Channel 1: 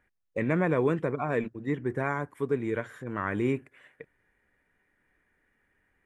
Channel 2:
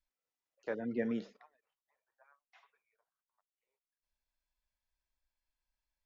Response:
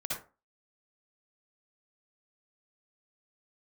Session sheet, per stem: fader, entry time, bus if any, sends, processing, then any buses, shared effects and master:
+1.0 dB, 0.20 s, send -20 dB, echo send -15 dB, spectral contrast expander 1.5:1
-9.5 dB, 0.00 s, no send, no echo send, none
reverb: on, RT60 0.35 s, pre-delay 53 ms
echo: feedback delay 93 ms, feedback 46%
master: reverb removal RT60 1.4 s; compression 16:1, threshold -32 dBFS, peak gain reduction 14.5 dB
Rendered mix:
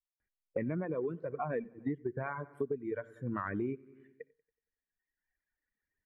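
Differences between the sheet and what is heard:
stem 1 +1.0 dB -> +9.5 dB; stem 2 -9.5 dB -> -16.0 dB

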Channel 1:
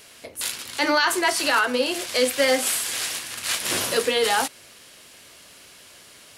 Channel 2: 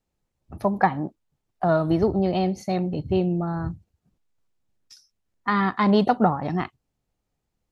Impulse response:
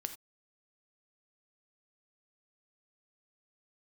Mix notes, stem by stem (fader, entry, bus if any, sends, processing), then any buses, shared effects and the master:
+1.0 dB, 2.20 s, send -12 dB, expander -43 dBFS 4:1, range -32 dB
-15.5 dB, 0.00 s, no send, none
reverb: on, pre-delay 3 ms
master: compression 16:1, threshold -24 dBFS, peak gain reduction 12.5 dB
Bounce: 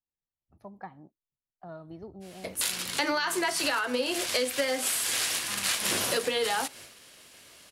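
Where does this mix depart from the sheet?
stem 1: send -12 dB -> -19.5 dB; stem 2 -15.5 dB -> -23.0 dB

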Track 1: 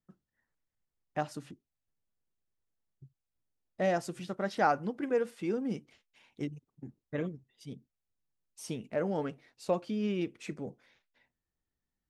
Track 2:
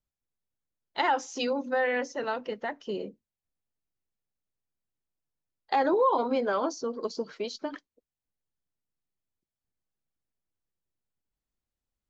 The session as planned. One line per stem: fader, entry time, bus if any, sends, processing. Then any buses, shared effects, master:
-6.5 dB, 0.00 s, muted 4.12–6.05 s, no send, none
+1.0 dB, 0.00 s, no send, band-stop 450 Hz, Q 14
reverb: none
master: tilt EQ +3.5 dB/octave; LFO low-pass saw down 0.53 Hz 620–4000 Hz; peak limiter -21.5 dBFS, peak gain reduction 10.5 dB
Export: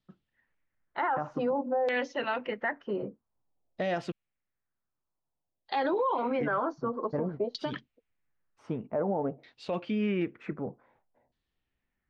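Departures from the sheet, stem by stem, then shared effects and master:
stem 1 -6.5 dB -> +3.5 dB; master: missing tilt EQ +3.5 dB/octave

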